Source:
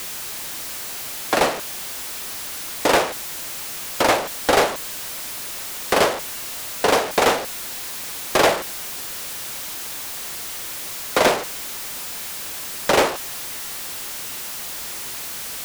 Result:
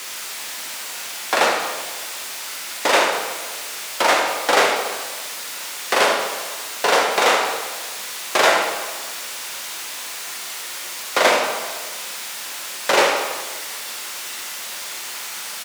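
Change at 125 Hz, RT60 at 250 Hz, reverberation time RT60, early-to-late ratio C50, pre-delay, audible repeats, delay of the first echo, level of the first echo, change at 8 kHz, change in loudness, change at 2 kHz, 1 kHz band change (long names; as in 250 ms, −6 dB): below −10 dB, 1.5 s, 1.4 s, 3.0 dB, 6 ms, 1, 76 ms, −8.5 dB, +1.5 dB, +1.5 dB, +4.5 dB, +2.5 dB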